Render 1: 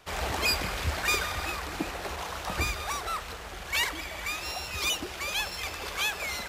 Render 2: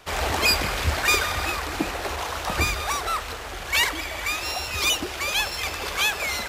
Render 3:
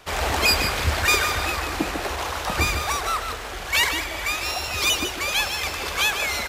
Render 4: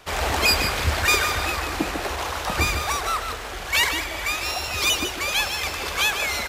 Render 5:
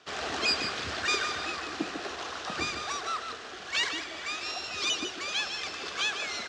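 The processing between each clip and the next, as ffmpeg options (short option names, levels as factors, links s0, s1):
-af "bandreject=f=60:t=h:w=6,bandreject=f=120:t=h:w=6,bandreject=f=180:t=h:w=6,volume=2.11"
-af "aecho=1:1:149:0.376,volume=1.12"
-af anull
-af "highpass=200,equalizer=f=550:t=q:w=4:g=-6,equalizer=f=910:t=q:w=4:g=-9,equalizer=f=2200:t=q:w=4:g=-6,lowpass=f=6400:w=0.5412,lowpass=f=6400:w=1.3066,volume=0.501"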